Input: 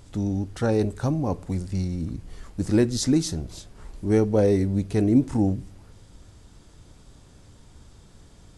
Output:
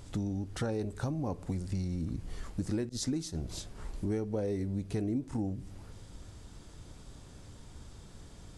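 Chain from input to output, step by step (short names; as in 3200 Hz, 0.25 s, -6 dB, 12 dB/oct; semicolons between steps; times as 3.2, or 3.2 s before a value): 2.89–3.35 expander -23 dBFS; compressor 6:1, threshold -31 dBFS, peak gain reduction 16.5 dB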